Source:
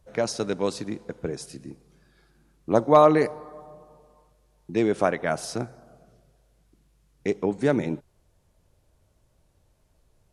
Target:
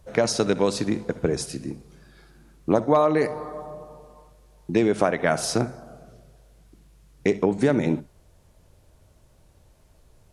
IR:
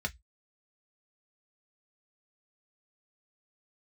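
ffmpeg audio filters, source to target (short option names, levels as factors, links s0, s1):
-filter_complex "[0:a]acompressor=threshold=0.0631:ratio=6,asplit=2[s0][s1];[1:a]atrim=start_sample=2205,adelay=63[s2];[s1][s2]afir=irnorm=-1:irlink=0,volume=0.1[s3];[s0][s3]amix=inputs=2:normalize=0,volume=2.51"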